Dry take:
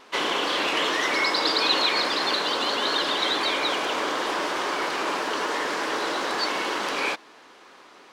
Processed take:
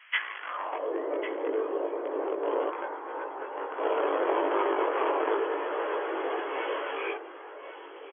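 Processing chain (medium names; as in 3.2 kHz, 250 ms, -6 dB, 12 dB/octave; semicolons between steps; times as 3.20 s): fade out at the end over 2.44 s; low-pass that closes with the level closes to 490 Hz, closed at -20.5 dBFS; 2.69–3.79 s: ring modulator 490 Hz; 5.35–6.53 s: hard clipper -29.5 dBFS, distortion -15 dB; in parallel at -7 dB: bit crusher 4-bit; on the sum: high-pass sweep 1.9 kHz -> 420 Hz, 0.37–0.95 s; brick-wall FIR band-pass 260–3400 Hz; on a send: delay 1098 ms -12 dB; on the sum: chorus voices 6, 0.29 Hz, delay 19 ms, depth 1.8 ms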